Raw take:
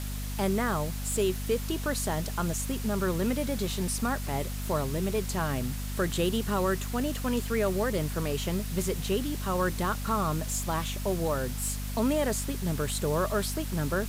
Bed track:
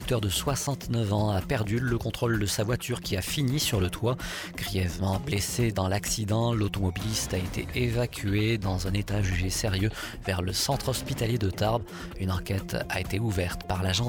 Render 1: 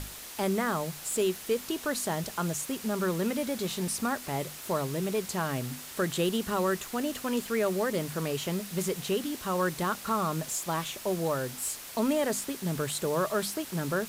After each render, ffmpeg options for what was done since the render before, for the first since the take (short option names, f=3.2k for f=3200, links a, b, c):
-af "bandreject=f=50:t=h:w=6,bandreject=f=100:t=h:w=6,bandreject=f=150:t=h:w=6,bandreject=f=200:t=h:w=6,bandreject=f=250:t=h:w=6"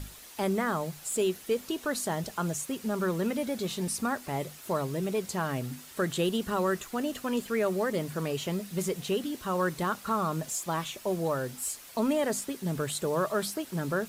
-af "afftdn=nr=7:nf=-44"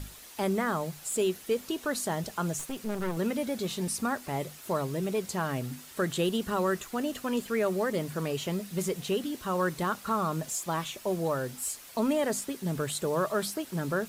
-filter_complex "[0:a]asettb=1/sr,asplit=3[a][b][c];[a]atrim=end=2.594[d];[b]atrim=start=2.59:end=3.17,asetpts=PTS-STARTPTS,afade=t=in:d=0.004:c=qsin,afade=t=out:st=0.576:d=0.004:c=qsin,aeval=exprs='clip(val(0),-1,0.01)':c=same[e];[c]atrim=start=3.166[f];[d][e]acrossfade=d=0.004:c1=hsin:c2=qsin[g];[g][f]acrossfade=d=0.004:c1=qsin:c2=hsin"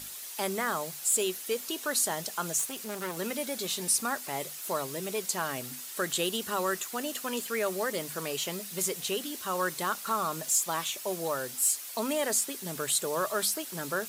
-af "highpass=f=490:p=1,highshelf=f=3.7k:g=9.5"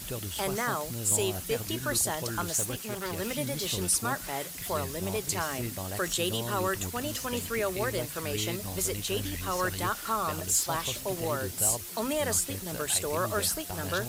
-filter_complex "[1:a]volume=-10.5dB[a];[0:a][a]amix=inputs=2:normalize=0"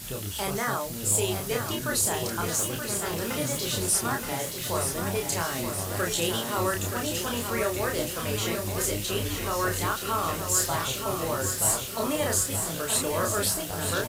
-filter_complex "[0:a]asplit=2[a][b];[b]adelay=30,volume=-3dB[c];[a][c]amix=inputs=2:normalize=0,aecho=1:1:925|1850|2775|3700|4625|5550|6475:0.447|0.255|0.145|0.0827|0.0472|0.0269|0.0153"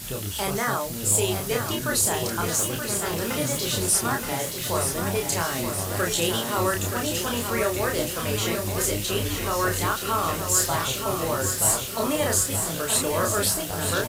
-af "volume=3dB"